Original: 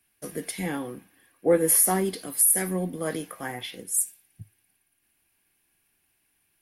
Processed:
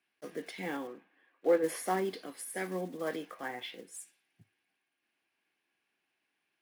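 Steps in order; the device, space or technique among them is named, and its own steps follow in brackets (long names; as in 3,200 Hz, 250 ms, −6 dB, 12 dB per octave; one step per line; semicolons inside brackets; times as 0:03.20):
early digital voice recorder (band-pass filter 280–3,900 Hz; one scale factor per block 5 bits)
0:00.87–0:01.64: bass and treble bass −7 dB, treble −13 dB
level −4.5 dB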